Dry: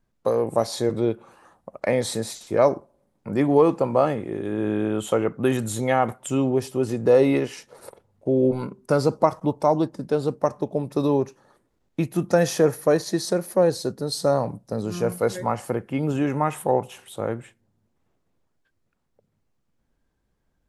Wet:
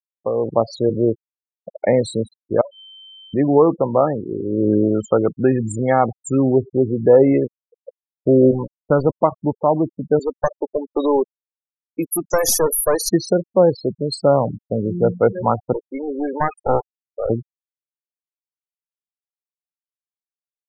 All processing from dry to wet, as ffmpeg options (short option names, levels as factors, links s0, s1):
-filter_complex "[0:a]asettb=1/sr,asplit=3[s0][s1][s2];[s0]atrim=end=2.614[s3];[s1]atrim=start=2.61:end=3.34,asetpts=PTS-STARTPTS,afade=t=in:d=0.004:c=qsin,afade=t=out:st=0.726:d=0.004:c=qsin,highpass=680,aeval=exprs='val(0)+0.02*sin(2*PI*3100*n/s)':c=same,acompressor=threshold=0.0251:ratio=16:attack=3.2:release=140:knee=1:detection=peak[s4];[s2]atrim=start=3.336[s5];[s3][s4]acrossfade=d=0.004:c1=hsin:c2=qsin[s6];[s6][s5]acrossfade=d=0.004:c1=qsin:c2=hsin,asettb=1/sr,asplit=3[s7][s8][s9];[s7]atrim=end=8.634[s10];[s8]atrim=start=8.63:end=9.22,asetpts=PTS-STARTPTS,afade=t=in:d=0.004:c=qsin,afade=t=out:st=0.586:d=0.004:c=qsin,asubboost=boost=3:cutoff=110,aeval=exprs='val(0)*gte(abs(val(0)),0.0501)':c=same[s11];[s9]atrim=start=9.216[s12];[s10][s11]acrossfade=d=0.004:c1=hsin:c2=qsin[s13];[s13][s12]acrossfade=d=0.004:c1=qsin:c2=hsin,asettb=1/sr,asplit=3[s14][s15][s16];[s14]atrim=end=10.194[s17];[s15]atrim=start=10.19:end=13.09,asetpts=PTS-STARTPTS,afade=t=in:d=0.004:c=qsin,afade=t=out:st=2.896:d=0.004:c=qsin,highpass=210,aemphasis=mode=production:type=riaa,aeval=exprs='clip(val(0),-1,0.0596)':c=same[s18];[s16]atrim=start=13.086[s19];[s17][s18]acrossfade=d=0.004:c1=hsin:c2=qsin[s20];[s20][s19]acrossfade=d=0.004:c1=qsin:c2=hsin,asettb=1/sr,asplit=3[s21][s22][s23];[s21]atrim=end=15.734[s24];[s22]atrim=start=15.73:end=17.3,asetpts=PTS-STARTPTS,afade=t=in:d=0.004:c=qsin,afade=t=out:st=1.566:d=0.004:c=qsin,highpass=410,equalizer=f=3600:t=o:w=0.64:g=-3,aeval=exprs='clip(val(0),-1,0.0316)':c=same[s25];[s23]atrim=start=17.296[s26];[s24][s25]acrossfade=d=0.004:c1=hsin:c2=qsin[s27];[s27][s26]acrossfade=d=0.004:c1=qsin:c2=hsin,afftfilt=real='re*gte(hypot(re,im),0.0708)':imag='im*gte(hypot(re,im),0.0708)':win_size=1024:overlap=0.75,equalizer=f=2700:w=2.5:g=-14.5,dynaudnorm=f=280:g=3:m=3.76,volume=0.891"